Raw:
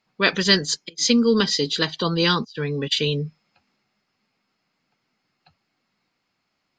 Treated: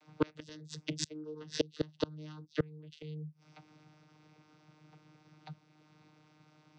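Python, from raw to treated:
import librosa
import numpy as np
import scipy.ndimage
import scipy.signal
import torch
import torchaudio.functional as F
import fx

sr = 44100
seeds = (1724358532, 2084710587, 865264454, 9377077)

y = fx.peak_eq(x, sr, hz=1900.0, db=-4.5, octaves=0.34)
y = fx.vocoder(y, sr, bands=16, carrier='saw', carrier_hz=153.0)
y = fx.gate_flip(y, sr, shuts_db=-19.0, range_db=-33)
y = fx.band_squash(y, sr, depth_pct=40)
y = F.gain(torch.from_numpy(y), 5.0).numpy()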